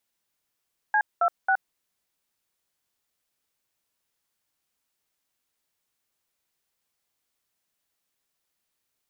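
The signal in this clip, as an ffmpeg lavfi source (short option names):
-f lavfi -i "aevalsrc='0.0891*clip(min(mod(t,0.272),0.07-mod(t,0.272))/0.002,0,1)*(eq(floor(t/0.272),0)*(sin(2*PI*852*mod(t,0.272))+sin(2*PI*1633*mod(t,0.272)))+eq(floor(t/0.272),1)*(sin(2*PI*697*mod(t,0.272))+sin(2*PI*1336*mod(t,0.272)))+eq(floor(t/0.272),2)*(sin(2*PI*770*mod(t,0.272))+sin(2*PI*1477*mod(t,0.272))))':d=0.816:s=44100"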